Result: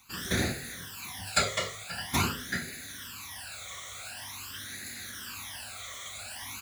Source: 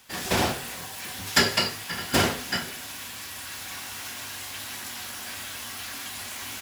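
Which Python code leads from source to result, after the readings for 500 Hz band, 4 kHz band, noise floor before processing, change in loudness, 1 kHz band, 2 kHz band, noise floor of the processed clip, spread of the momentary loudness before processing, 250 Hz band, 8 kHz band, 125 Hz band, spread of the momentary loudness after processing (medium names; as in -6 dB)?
-7.5 dB, -7.0 dB, -39 dBFS, -5.5 dB, -6.0 dB, -5.5 dB, -44 dBFS, 12 LU, -5.5 dB, -4.0 dB, -2.0 dB, 11 LU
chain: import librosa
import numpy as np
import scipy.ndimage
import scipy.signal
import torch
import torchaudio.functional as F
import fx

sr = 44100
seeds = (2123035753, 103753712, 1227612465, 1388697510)

y = fx.phaser_stages(x, sr, stages=12, low_hz=270.0, high_hz=1000.0, hz=0.46, feedback_pct=30)
y = y * librosa.db_to_amplitude(-2.0)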